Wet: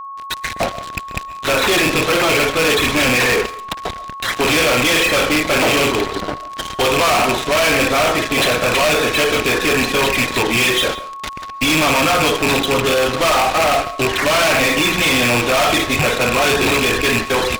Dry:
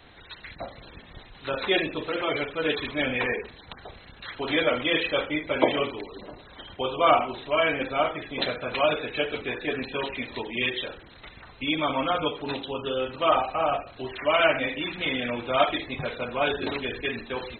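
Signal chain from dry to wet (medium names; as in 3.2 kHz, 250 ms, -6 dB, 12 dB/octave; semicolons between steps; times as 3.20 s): rattle on loud lows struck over -38 dBFS, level -13 dBFS; fuzz box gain 39 dB, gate -41 dBFS; on a send at -16.5 dB: reverberation RT60 0.30 s, pre-delay 95 ms; on the sum: whistle 1.1 kHz -28 dBFS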